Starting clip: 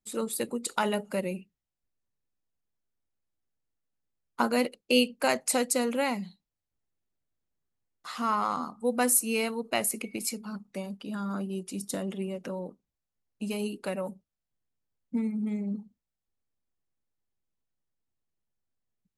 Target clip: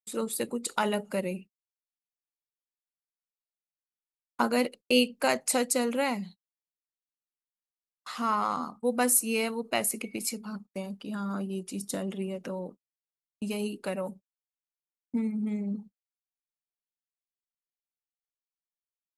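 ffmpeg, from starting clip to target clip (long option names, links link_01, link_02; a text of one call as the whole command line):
ffmpeg -i in.wav -af "agate=range=-38dB:threshold=-45dB:ratio=16:detection=peak" out.wav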